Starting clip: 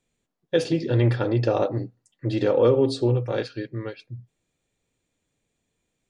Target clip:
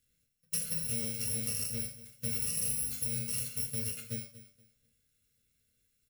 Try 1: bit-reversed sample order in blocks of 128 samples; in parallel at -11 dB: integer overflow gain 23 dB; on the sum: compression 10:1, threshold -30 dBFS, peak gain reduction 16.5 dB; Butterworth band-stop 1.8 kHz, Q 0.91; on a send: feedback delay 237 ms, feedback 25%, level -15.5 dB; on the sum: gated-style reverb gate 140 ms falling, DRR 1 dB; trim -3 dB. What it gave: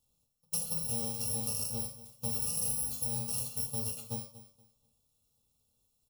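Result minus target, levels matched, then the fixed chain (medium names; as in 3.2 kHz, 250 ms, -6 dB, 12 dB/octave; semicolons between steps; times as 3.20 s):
1 kHz band +13.0 dB
bit-reversed sample order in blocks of 128 samples; in parallel at -11 dB: integer overflow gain 23 dB; on the sum: compression 10:1, threshold -30 dBFS, peak gain reduction 16.5 dB; Butterworth band-stop 900 Hz, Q 0.91; on a send: feedback delay 237 ms, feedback 25%, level -15.5 dB; on the sum: gated-style reverb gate 140 ms falling, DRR 1 dB; trim -3 dB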